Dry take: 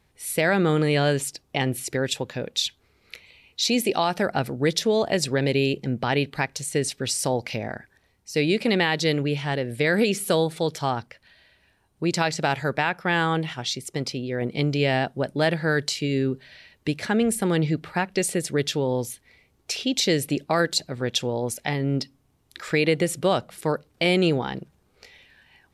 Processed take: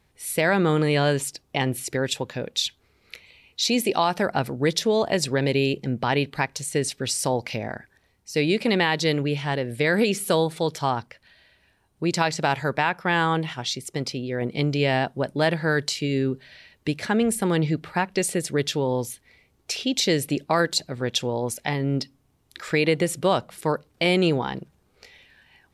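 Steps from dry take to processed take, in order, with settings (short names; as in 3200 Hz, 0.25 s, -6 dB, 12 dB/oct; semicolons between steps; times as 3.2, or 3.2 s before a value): dynamic EQ 1000 Hz, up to +5 dB, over -43 dBFS, Q 4.2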